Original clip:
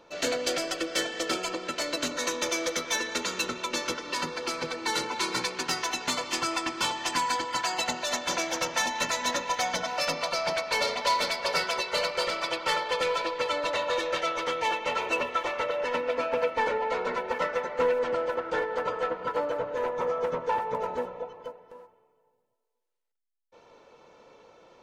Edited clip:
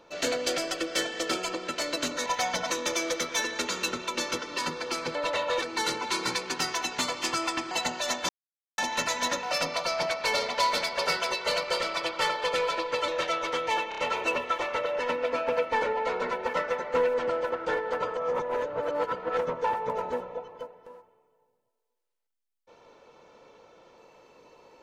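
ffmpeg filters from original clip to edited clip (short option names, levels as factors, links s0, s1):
-filter_complex "[0:a]asplit=15[s0][s1][s2][s3][s4][s5][s6][s7][s8][s9][s10][s11][s12][s13][s14];[s0]atrim=end=2.262[s15];[s1]atrim=start=9.458:end=9.902[s16];[s2]atrim=start=2.258:end=4.712[s17];[s3]atrim=start=13.548:end=14.022[s18];[s4]atrim=start=4.708:end=6.802[s19];[s5]atrim=start=7.738:end=8.32,asetpts=PTS-STARTPTS,afade=t=out:st=0.578:d=0.004:c=hsin[s20];[s6]atrim=start=8.32:end=8.81,asetpts=PTS-STARTPTS,volume=0[s21];[s7]atrim=start=8.81:end=9.462,asetpts=PTS-STARTPTS,afade=t=in:d=0.004:c=hsin[s22];[s8]atrim=start=9.898:end=13.552[s23];[s9]atrim=start=14.018:end=14.862[s24];[s10]atrim=start=14.828:end=14.862[s25];[s11]atrim=start=14.828:end=14.862[s26];[s12]atrim=start=14.828:end=19.022[s27];[s13]atrim=start=19.018:end=20.232,asetpts=PTS-STARTPTS,areverse[s28];[s14]atrim=start=20.228[s29];[s15][s16]acrossfade=d=0.004:c1=hsin:c2=hsin[s30];[s30][s17]acrossfade=d=0.004:c1=hsin:c2=hsin[s31];[s31][s18]acrossfade=d=0.004:c1=hsin:c2=hsin[s32];[s32][s19]acrossfade=d=0.004:c1=hsin:c2=hsin[s33];[s20][s21][s22]concat=n=3:v=0:a=1[s34];[s33][s34]acrossfade=d=0.004:c1=hsin:c2=hsin[s35];[s35][s23]acrossfade=d=0.004:c1=hsin:c2=hsin[s36];[s36][s24]acrossfade=d=0.004:c1=hsin:c2=hsin[s37];[s37][s25]acrossfade=d=0.004:c1=hsin:c2=hsin[s38];[s38][s26]acrossfade=d=0.004:c1=hsin:c2=hsin[s39];[s39][s27]acrossfade=d=0.004:c1=hsin:c2=hsin[s40];[s40][s28]acrossfade=d=0.004:c1=hsin:c2=hsin[s41];[s41][s29]acrossfade=d=0.004:c1=hsin:c2=hsin"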